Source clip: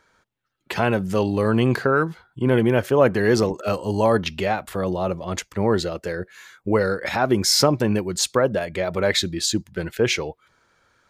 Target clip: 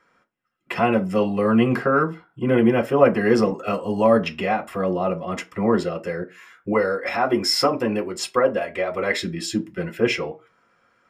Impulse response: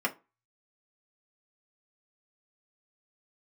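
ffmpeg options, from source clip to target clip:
-filter_complex "[0:a]asettb=1/sr,asplit=3[a][b][c];[a]atrim=end=6.724[d];[b]atrim=start=6.72:end=9.15,asetpts=PTS-STARTPTS,afade=t=in:d=0.004:c=qsin,afade=t=out:st=2.426:d=0.004:c=qsin,equalizer=f=160:t=o:w=0.69:g=-12.5[e];[c]atrim=start=9.146[f];[d][e]acrossfade=d=0.004:c1=hsin:c2=qsin[g];[g][f]acrossfade=d=0.004:c1=qsin:c2=hsin[h];[1:a]atrim=start_sample=2205[i];[h][i]afir=irnorm=-1:irlink=0,volume=-7.5dB"

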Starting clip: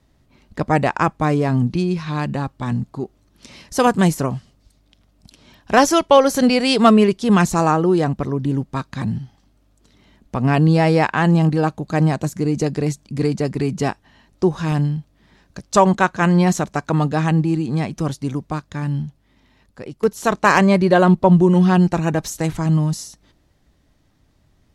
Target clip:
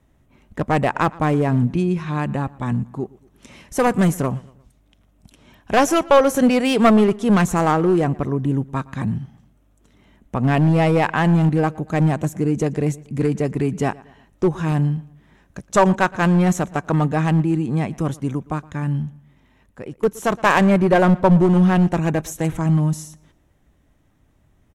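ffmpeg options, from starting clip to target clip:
-filter_complex "[0:a]equalizer=f=4.6k:w=2.3:g=-13.5,aeval=exprs='clip(val(0),-1,0.282)':c=same,asplit=2[a][b];[b]adelay=117,lowpass=f=4.7k:p=1,volume=-22dB,asplit=2[c][d];[d]adelay=117,lowpass=f=4.7k:p=1,volume=0.44,asplit=2[e][f];[f]adelay=117,lowpass=f=4.7k:p=1,volume=0.44[g];[c][e][g]amix=inputs=3:normalize=0[h];[a][h]amix=inputs=2:normalize=0"

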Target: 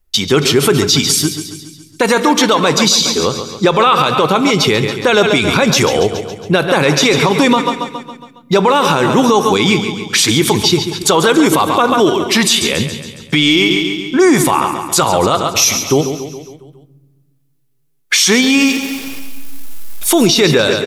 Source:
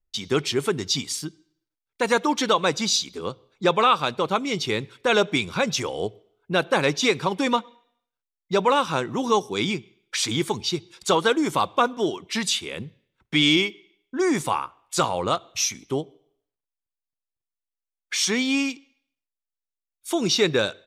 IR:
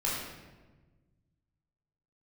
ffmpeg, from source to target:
-filter_complex "[0:a]asettb=1/sr,asplit=3[a][b][c];[a]atrim=end=18.424[d];[b]atrim=start=18.42:end=20.26,asetpts=PTS-STARTPTS,afade=t=in:d=0.004:c=qsin,afade=t=out:st=1.836:d=0.004:c=qsin,aeval=exprs='val(0)+0.5*0.01*sgn(val(0))':c=same[e];[c]atrim=start=20.256[f];[d][e]acrossfade=d=0.004:c1=hsin:c2=qsin[g];[g][f]acrossfade=d=0.004:c1=qsin:c2=hsin,equalizer=f=12k:t=o:w=0.32:g=9,aecho=1:1:138|276|414|552|690|828:0.237|0.13|0.0717|0.0395|0.0217|0.0119,asplit=2[h][i];[1:a]atrim=start_sample=2205,lowshelf=f=160:g=7.5[j];[i][j]afir=irnorm=-1:irlink=0,volume=-24.5dB[k];[h][k]amix=inputs=2:normalize=0,alimiter=level_in=17.5dB:limit=-1dB:release=50:level=0:latency=1,volume=-1dB"

